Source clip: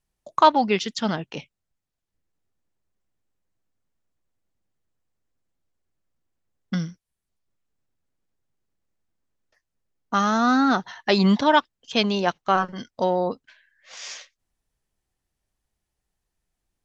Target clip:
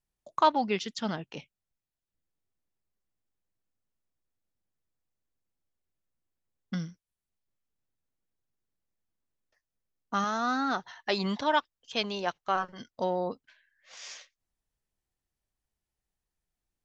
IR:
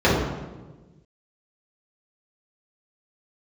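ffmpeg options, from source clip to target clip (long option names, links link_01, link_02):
-filter_complex "[0:a]asettb=1/sr,asplit=3[link_01][link_02][link_03];[link_01]atrim=end=10.244[link_04];[link_02]atrim=start=10.24:end=12.8,asetpts=PTS-STARTPTS,afade=type=in:duration=0.004:curve=qsin,afade=type=out:start_time=2.556:duration=0.004:curve=qsin,equalizer=frequency=210:width_type=o:width=1.4:gain=-6.5[link_05];[link_03]atrim=start=12.796[link_06];[link_04][link_05]acrossfade=duration=0.004:curve1=hsin:curve2=qsin[link_07];[link_07][link_06]acrossfade=duration=0.004:curve1=qsin:curve2=hsin,volume=-7.5dB"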